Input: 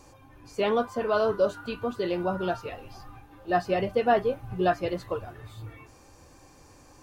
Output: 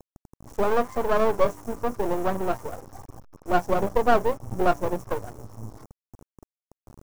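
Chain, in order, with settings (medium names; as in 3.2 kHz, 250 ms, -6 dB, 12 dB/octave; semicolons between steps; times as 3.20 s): send-on-delta sampling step -43 dBFS; brick-wall FIR band-stop 1.2–5.3 kHz; half-wave rectifier; trim +7 dB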